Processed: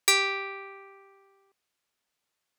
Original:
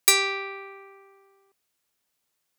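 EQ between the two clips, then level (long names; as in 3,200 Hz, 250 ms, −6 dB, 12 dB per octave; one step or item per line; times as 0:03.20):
low-shelf EQ 470 Hz −4 dB
high-shelf EQ 8,100 Hz −11.5 dB
0.0 dB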